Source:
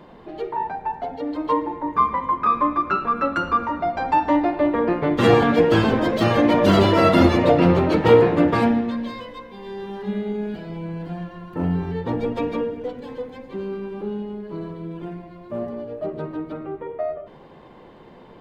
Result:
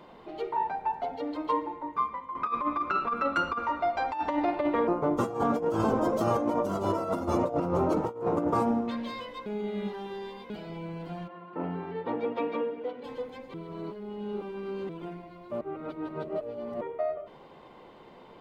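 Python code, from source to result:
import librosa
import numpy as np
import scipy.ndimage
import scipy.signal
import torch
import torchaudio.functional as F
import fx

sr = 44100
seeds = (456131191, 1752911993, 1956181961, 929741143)

y = fx.peak_eq(x, sr, hz=180.0, db=-8.0, octaves=1.2, at=(3.59, 4.22))
y = fx.band_shelf(y, sr, hz=2800.0, db=-16.0, octaves=1.7, at=(4.87, 8.88))
y = fx.bandpass_edges(y, sr, low_hz=220.0, high_hz=fx.line((11.27, 2000.0), (13.03, 3200.0)), at=(11.27, 13.03), fade=0.02)
y = fx.edit(y, sr, fx.fade_out_to(start_s=1.22, length_s=1.13, floor_db=-15.0),
    fx.reverse_span(start_s=9.46, length_s=1.04),
    fx.reverse_span(start_s=13.54, length_s=1.35),
    fx.reverse_span(start_s=15.61, length_s=1.2), tone=tone)
y = fx.low_shelf(y, sr, hz=350.0, db=-8.5)
y = fx.notch(y, sr, hz=1700.0, q=8.5)
y = fx.over_compress(y, sr, threshold_db=-22.0, ratio=-0.5)
y = y * librosa.db_to_amplitude(-4.0)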